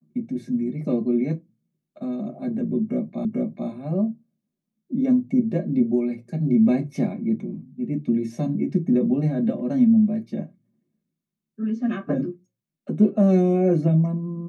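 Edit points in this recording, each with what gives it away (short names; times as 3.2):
3.25 repeat of the last 0.44 s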